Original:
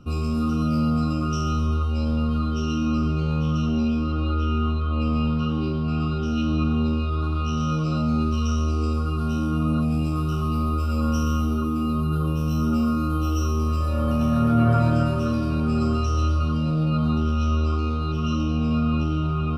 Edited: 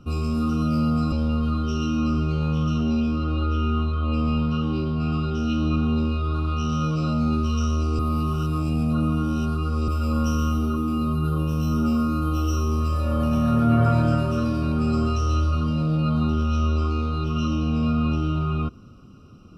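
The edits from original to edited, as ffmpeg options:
-filter_complex "[0:a]asplit=4[s0][s1][s2][s3];[s0]atrim=end=1.122[s4];[s1]atrim=start=1.998:end=8.872[s5];[s2]atrim=start=8.868:end=10.762,asetpts=PTS-STARTPTS,areverse[s6];[s3]atrim=start=10.758[s7];[s4][s5]acrossfade=d=0.004:c1=hsin:c2=hsin[s8];[s8][s6]acrossfade=d=0.004:c1=hsin:c2=hsin[s9];[s9][s7]acrossfade=d=0.004:c1=hsin:c2=hsin"

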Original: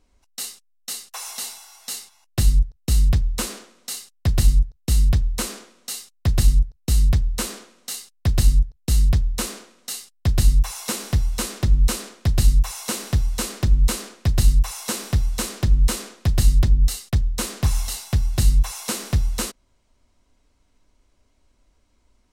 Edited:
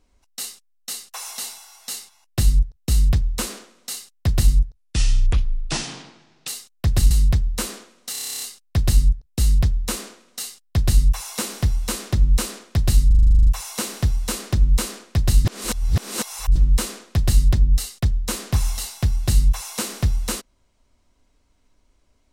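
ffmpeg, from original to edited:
-filter_complex "[0:a]asplit=26[s0][s1][s2][s3][s4][s5][s6][s7][s8][s9][s10][s11][s12][s13][s14][s15][s16][s17][s18][s19][s20][s21][s22][s23][s24][s25];[s0]atrim=end=4.754[s26];[s1]atrim=start=4.75:end=5.89,asetpts=PTS-STARTPTS,asetrate=29106,aresample=44100[s27];[s2]atrim=start=5.886:end=6.522[s28];[s3]atrim=start=6.908:end=7.952[s29];[s4]atrim=start=7.918:end=7.952[s30];[s5]atrim=start=7.918:end=7.952[s31];[s6]atrim=start=7.918:end=7.952[s32];[s7]atrim=start=7.918:end=7.952[s33];[s8]atrim=start=7.918:end=7.952[s34];[s9]atrim=start=7.918:end=7.952[s35];[s10]atrim=start=7.918:end=7.952[s36];[s11]atrim=start=7.918:end=7.952[s37];[s12]atrim=start=7.918:end=7.952[s38];[s13]atrim=start=7.918:end=12.612[s39];[s14]atrim=start=12.568:end=12.612[s40];[s15]atrim=start=12.568:end=12.612[s41];[s16]atrim=start=12.568:end=12.612[s42];[s17]atrim=start=12.568:end=12.612[s43];[s18]atrim=start=12.568:end=12.612[s44];[s19]atrim=start=12.568:end=12.612[s45];[s20]atrim=start=12.568:end=12.612[s46];[s21]atrim=start=12.568:end=12.612[s47];[s22]atrim=start=12.568:end=12.612[s48];[s23]atrim=start=12.568:end=14.552[s49];[s24]atrim=start=14.548:end=15.662,asetpts=PTS-STARTPTS,areverse[s50];[s25]atrim=start=15.658[s51];[s26][s27]acrossfade=d=0.004:c1=hsin:c2=hsin[s52];[s52][s28]acrossfade=d=0.004:c1=hsin:c2=hsin[s53];[s53][s29]acrossfade=d=0.004:c1=hsin:c2=hsin[s54];[s54][s30]acrossfade=d=0.004:c1=hsin:c2=hsin[s55];[s55][s31]acrossfade=d=0.004:c1=hsin:c2=hsin[s56];[s56][s32]acrossfade=d=0.004:c1=hsin:c2=hsin[s57];[s57][s33]acrossfade=d=0.004:c1=hsin:c2=hsin[s58];[s58][s34]acrossfade=d=0.004:c1=hsin:c2=hsin[s59];[s59][s35]acrossfade=d=0.004:c1=hsin:c2=hsin[s60];[s60][s36]acrossfade=d=0.004:c1=hsin:c2=hsin[s61];[s61][s37]acrossfade=d=0.004:c1=hsin:c2=hsin[s62];[s62][s38]acrossfade=d=0.004:c1=hsin:c2=hsin[s63];[s63][s39]acrossfade=d=0.004:c1=hsin:c2=hsin[s64];[s64][s40]acrossfade=d=0.004:c1=hsin:c2=hsin[s65];[s65][s41]acrossfade=d=0.004:c1=hsin:c2=hsin[s66];[s66][s42]acrossfade=d=0.004:c1=hsin:c2=hsin[s67];[s67][s43]acrossfade=d=0.004:c1=hsin:c2=hsin[s68];[s68][s44]acrossfade=d=0.004:c1=hsin:c2=hsin[s69];[s69][s45]acrossfade=d=0.004:c1=hsin:c2=hsin[s70];[s70][s46]acrossfade=d=0.004:c1=hsin:c2=hsin[s71];[s71][s47]acrossfade=d=0.004:c1=hsin:c2=hsin[s72];[s72][s48]acrossfade=d=0.004:c1=hsin:c2=hsin[s73];[s73][s49]acrossfade=d=0.004:c1=hsin:c2=hsin[s74];[s74][s50]acrossfade=d=0.004:c1=hsin:c2=hsin[s75];[s75][s51]acrossfade=d=0.004:c1=hsin:c2=hsin"

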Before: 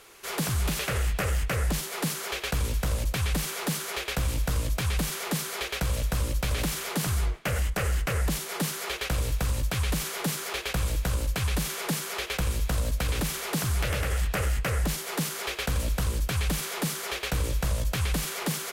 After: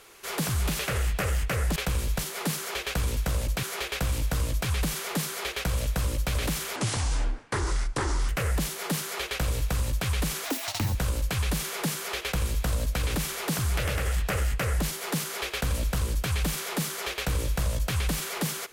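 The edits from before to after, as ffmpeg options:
-filter_complex "[0:a]asplit=8[s0][s1][s2][s3][s4][s5][s6][s7];[s0]atrim=end=1.762[s8];[s1]atrim=start=12.278:end=12.712[s9];[s2]atrim=start=1.758:end=3.202[s10];[s3]atrim=start=3.788:end=6.924[s11];[s4]atrim=start=6.92:end=7.99,asetpts=PTS-STARTPTS,asetrate=30870,aresample=44100[s12];[s5]atrim=start=7.986:end=10.154[s13];[s6]atrim=start=10.15:end=11,asetpts=PTS-STARTPTS,asetrate=74970,aresample=44100[s14];[s7]atrim=start=10.996[s15];[s8][s9]acrossfade=d=0.004:c1=hsin:c2=hsin[s16];[s16][s10]acrossfade=d=0.004:c1=hsin:c2=hsin[s17];[s17][s11]acrossfade=d=0.004:c1=hsin:c2=hsin[s18];[s18][s12]acrossfade=d=0.004:c1=hsin:c2=hsin[s19];[s19][s13]acrossfade=d=0.004:c1=hsin:c2=hsin[s20];[s20][s14]acrossfade=d=0.004:c1=hsin:c2=hsin[s21];[s21][s15]acrossfade=d=0.004:c1=hsin:c2=hsin"

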